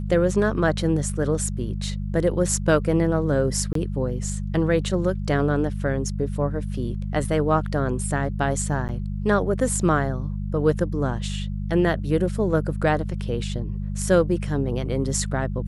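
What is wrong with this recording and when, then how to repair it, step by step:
mains hum 50 Hz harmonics 4 −28 dBFS
0:03.73–0:03.75: drop-out 23 ms
0:08.88–0:08.89: drop-out 9 ms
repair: hum removal 50 Hz, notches 4
repair the gap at 0:03.73, 23 ms
repair the gap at 0:08.88, 9 ms

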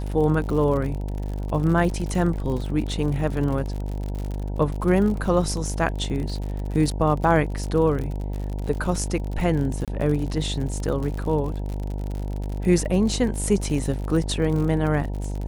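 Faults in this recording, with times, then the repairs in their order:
mains buzz 50 Hz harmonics 19 −28 dBFS
surface crackle 58 per second −29 dBFS
0:09.85–0:09.88: drop-out 27 ms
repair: click removal
hum removal 50 Hz, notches 19
repair the gap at 0:09.85, 27 ms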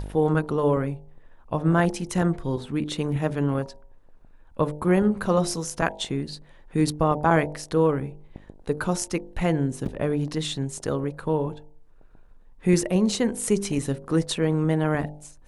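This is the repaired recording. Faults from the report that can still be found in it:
none of them is left

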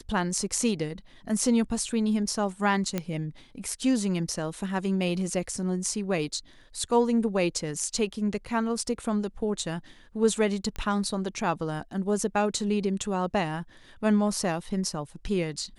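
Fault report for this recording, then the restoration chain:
0:02.98: click −14 dBFS
0:10.76: click −21 dBFS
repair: click removal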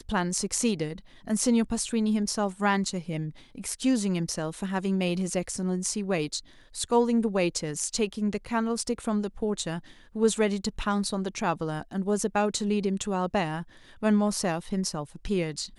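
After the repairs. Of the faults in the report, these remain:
none of them is left

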